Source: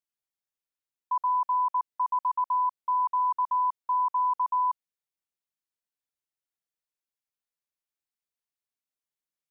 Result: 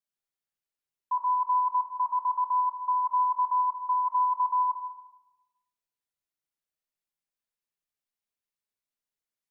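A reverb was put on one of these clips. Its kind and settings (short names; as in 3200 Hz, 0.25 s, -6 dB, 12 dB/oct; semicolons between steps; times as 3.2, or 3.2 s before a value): shoebox room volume 660 m³, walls mixed, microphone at 1.3 m; gain -3 dB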